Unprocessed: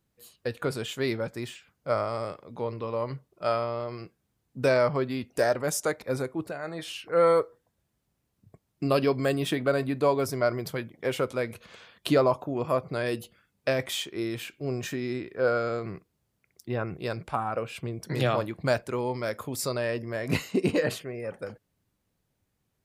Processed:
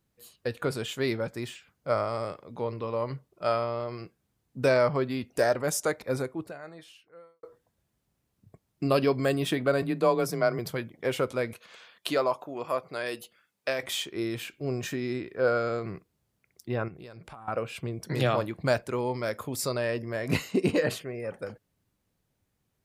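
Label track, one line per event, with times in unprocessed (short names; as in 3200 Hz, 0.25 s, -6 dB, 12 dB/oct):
6.190000	7.430000	fade out quadratic
9.820000	10.590000	frequency shift +24 Hz
11.530000	13.830000	HPF 680 Hz 6 dB/oct
16.880000	17.480000	compressor 8:1, threshold -42 dBFS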